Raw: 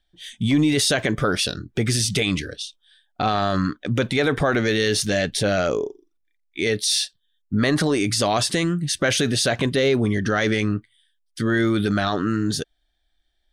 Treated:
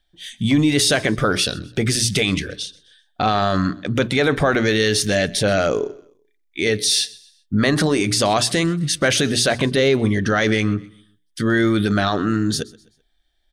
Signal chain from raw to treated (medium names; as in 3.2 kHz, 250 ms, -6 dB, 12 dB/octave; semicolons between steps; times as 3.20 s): hum notches 60/120/180/240/300/360/420 Hz; on a send: feedback delay 128 ms, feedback 38%, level -22.5 dB; on the sum: trim +3 dB